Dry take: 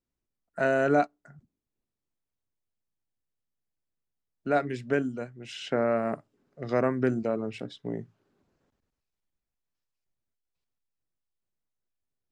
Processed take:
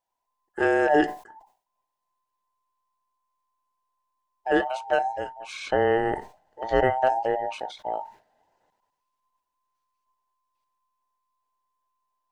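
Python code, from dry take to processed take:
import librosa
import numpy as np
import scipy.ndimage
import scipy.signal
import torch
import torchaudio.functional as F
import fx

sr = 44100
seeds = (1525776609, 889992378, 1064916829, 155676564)

y = fx.band_invert(x, sr, width_hz=1000)
y = fx.low_shelf(y, sr, hz=130.0, db=11.0, at=(4.98, 7.21))
y = fx.sustainer(y, sr, db_per_s=150.0)
y = y * librosa.db_to_amplitude(3.0)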